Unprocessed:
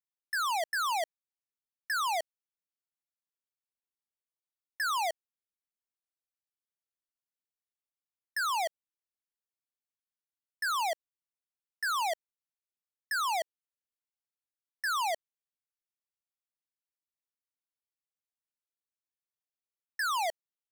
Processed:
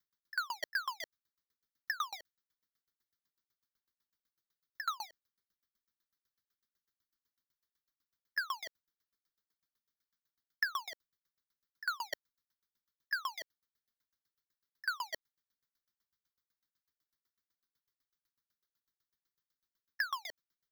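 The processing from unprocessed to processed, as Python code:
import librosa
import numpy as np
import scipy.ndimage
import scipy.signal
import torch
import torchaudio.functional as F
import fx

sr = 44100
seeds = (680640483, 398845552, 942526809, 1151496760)

y = fx.over_compress(x, sr, threshold_db=-35.0, ratio=-0.5)
y = fx.fixed_phaser(y, sr, hz=2600.0, stages=6)
y = fx.tremolo_decay(y, sr, direction='decaying', hz=8.0, depth_db=31)
y = y * librosa.db_to_amplitude(10.5)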